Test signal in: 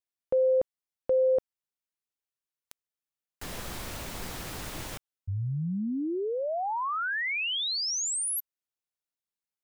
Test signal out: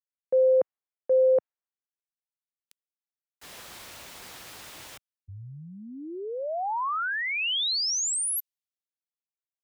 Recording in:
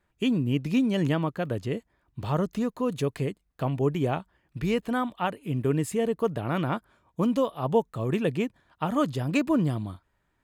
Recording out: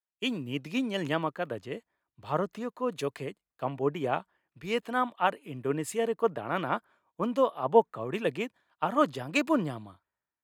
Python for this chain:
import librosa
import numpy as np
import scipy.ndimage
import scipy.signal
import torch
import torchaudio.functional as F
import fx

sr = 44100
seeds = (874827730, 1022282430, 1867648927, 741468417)

y = fx.highpass(x, sr, hz=810.0, slope=6)
y = fx.high_shelf(y, sr, hz=2700.0, db=-9.0)
y = fx.band_widen(y, sr, depth_pct=70)
y = y * librosa.db_to_amplitude(4.5)